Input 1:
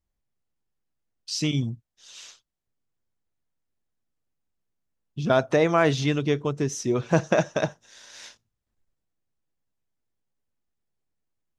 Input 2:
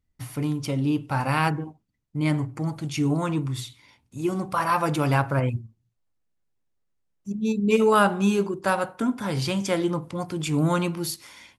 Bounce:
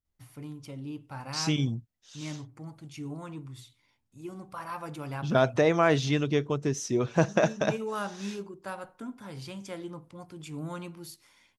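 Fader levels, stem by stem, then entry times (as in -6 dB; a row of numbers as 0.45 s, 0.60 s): -2.5 dB, -15.0 dB; 0.05 s, 0.00 s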